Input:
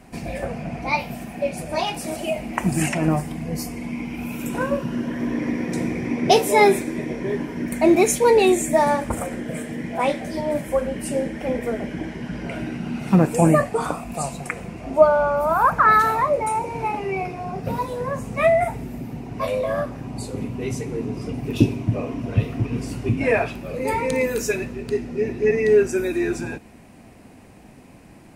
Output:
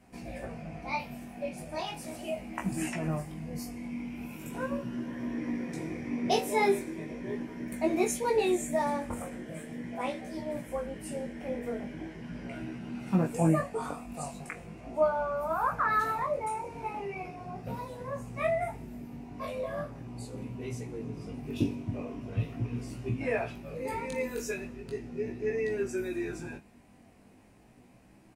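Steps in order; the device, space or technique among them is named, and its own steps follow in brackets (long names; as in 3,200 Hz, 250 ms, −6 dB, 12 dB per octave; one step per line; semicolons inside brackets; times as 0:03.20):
double-tracked vocal (double-tracking delay 25 ms −11 dB; chorus effect 0.39 Hz, delay 15.5 ms, depth 5.5 ms)
level −9 dB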